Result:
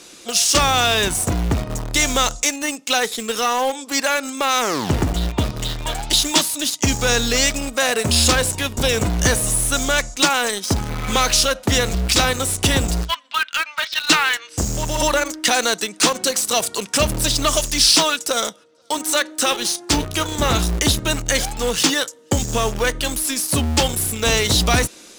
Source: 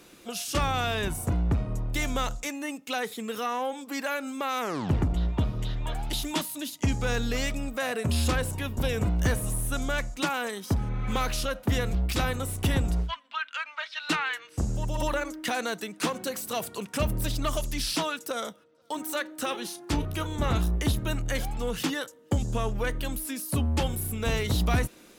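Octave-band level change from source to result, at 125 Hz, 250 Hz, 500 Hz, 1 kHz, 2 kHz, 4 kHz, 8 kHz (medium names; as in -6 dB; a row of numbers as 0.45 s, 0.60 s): +4.5 dB, +7.5 dB, +10.0 dB, +10.5 dB, +11.5 dB, +16.0 dB, +18.0 dB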